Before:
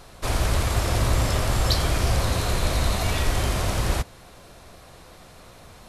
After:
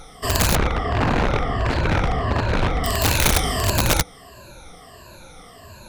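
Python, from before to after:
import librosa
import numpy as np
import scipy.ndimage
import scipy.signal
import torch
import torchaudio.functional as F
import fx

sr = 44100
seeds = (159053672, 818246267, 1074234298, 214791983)

y = fx.spec_ripple(x, sr, per_octave=1.4, drift_hz=-1.5, depth_db=20)
y = (np.mod(10.0 ** (11.5 / 20.0) * y + 1.0, 2.0) - 1.0) / 10.0 ** (11.5 / 20.0)
y = fx.lowpass(y, sr, hz=2000.0, slope=12, at=(0.55, 2.84))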